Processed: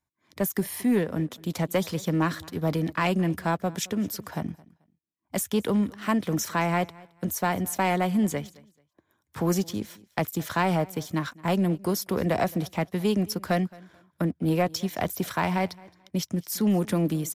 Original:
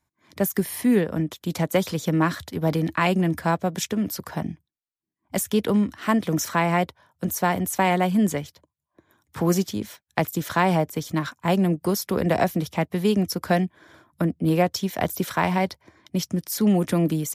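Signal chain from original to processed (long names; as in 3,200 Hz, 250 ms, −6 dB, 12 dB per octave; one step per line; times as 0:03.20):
leveller curve on the samples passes 1
on a send: repeating echo 218 ms, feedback 23%, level −23 dB
on the sum: level −6.5 dB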